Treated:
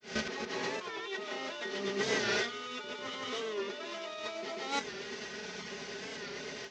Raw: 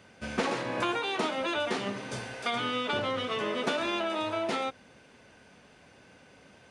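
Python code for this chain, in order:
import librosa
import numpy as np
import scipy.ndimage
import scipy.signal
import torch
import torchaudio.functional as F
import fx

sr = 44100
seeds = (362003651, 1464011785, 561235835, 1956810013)

y = fx.cvsd(x, sr, bps=32000)
y = scipy.signal.sosfilt(scipy.signal.butter(2, 41.0, 'highpass', fs=sr, output='sos'), y)
y = fx.low_shelf(y, sr, hz=68.0, db=-8.0)
y = y + 0.58 * np.pad(y, (int(4.8 * sr / 1000.0), 0))[:len(y)]
y = y + 10.0 ** (-8.0 / 20.0) * np.pad(y, (int(136 * sr / 1000.0), 0))[:len(y)]
y = fx.granulator(y, sr, seeds[0], grain_ms=259.0, per_s=8.8, spray_ms=100.0, spread_st=0)
y = fx.high_shelf(y, sr, hz=3100.0, db=11.5)
y = fx.over_compress(y, sr, threshold_db=-40.0, ratio=-1.0)
y = fx.small_body(y, sr, hz=(400.0, 1900.0), ring_ms=45, db=11)
y = fx.record_warp(y, sr, rpm=45.0, depth_cents=100.0)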